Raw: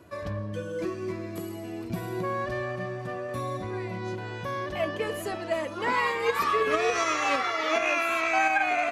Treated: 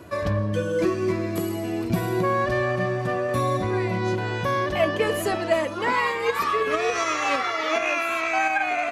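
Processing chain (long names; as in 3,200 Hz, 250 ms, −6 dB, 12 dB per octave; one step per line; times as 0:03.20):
speech leveller within 4 dB 0.5 s
level +5 dB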